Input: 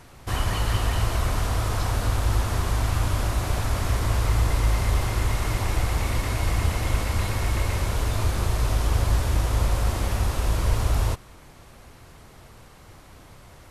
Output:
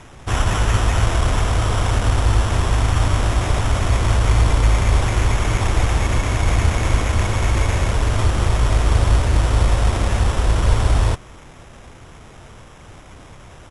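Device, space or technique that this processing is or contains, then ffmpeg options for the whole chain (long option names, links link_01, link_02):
crushed at another speed: -af "asetrate=88200,aresample=44100,acrusher=samples=5:mix=1:aa=0.000001,asetrate=22050,aresample=44100,volume=6.5dB"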